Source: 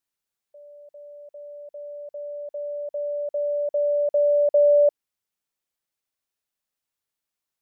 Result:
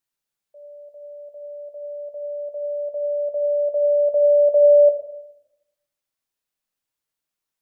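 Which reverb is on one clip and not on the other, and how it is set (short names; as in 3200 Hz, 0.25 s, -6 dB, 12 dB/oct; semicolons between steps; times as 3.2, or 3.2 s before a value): shoebox room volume 240 m³, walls mixed, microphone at 0.55 m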